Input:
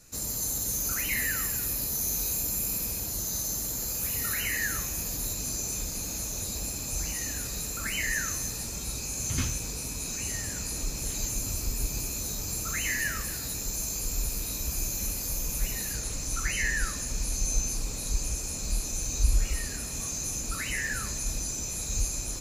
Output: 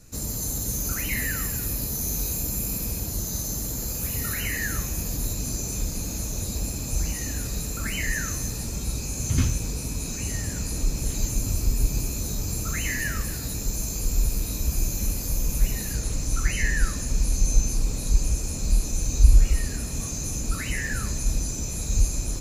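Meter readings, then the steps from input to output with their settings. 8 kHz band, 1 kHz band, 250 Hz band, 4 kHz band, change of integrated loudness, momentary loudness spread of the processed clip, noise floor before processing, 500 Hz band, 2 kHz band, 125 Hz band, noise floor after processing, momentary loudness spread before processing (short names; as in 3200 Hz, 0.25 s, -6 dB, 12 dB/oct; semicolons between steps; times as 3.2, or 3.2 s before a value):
0.0 dB, +1.5 dB, +7.5 dB, 0.0 dB, +2.5 dB, 5 LU, -35 dBFS, +4.5 dB, +0.5 dB, +9.0 dB, -32 dBFS, 5 LU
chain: low shelf 440 Hz +9.5 dB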